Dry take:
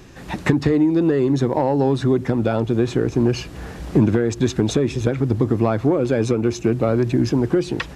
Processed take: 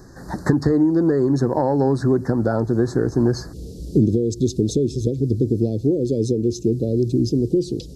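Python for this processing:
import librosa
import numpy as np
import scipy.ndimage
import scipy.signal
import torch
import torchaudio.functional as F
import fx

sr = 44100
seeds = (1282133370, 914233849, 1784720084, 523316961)

y = fx.cheby1_bandstop(x, sr, low_hz=fx.steps((0.0, 1700.0), (3.52, 450.0)), high_hz=4400.0, order=3)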